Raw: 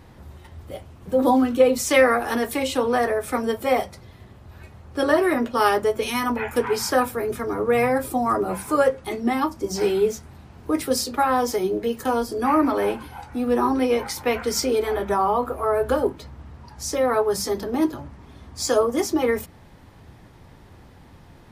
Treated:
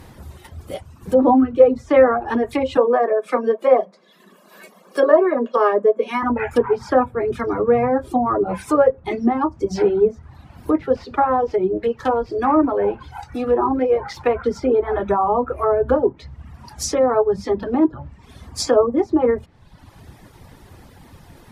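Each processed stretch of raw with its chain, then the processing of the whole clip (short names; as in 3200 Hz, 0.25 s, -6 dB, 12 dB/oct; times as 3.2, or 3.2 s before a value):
2.77–6.23 steep high-pass 180 Hz 96 dB/oct + comb 1.8 ms, depth 52%
10.72–14.46 median filter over 5 samples + bell 240 Hz -7 dB 0.25 oct
whole clip: reverb removal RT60 0.87 s; treble ducked by the level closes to 1000 Hz, closed at -20 dBFS; high shelf 8100 Hz +10.5 dB; gain +5.5 dB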